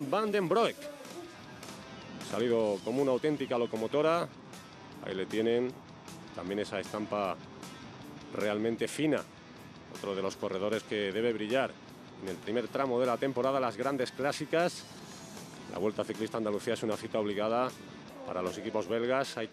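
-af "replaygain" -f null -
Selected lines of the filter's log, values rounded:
track_gain = +12.6 dB
track_peak = 0.133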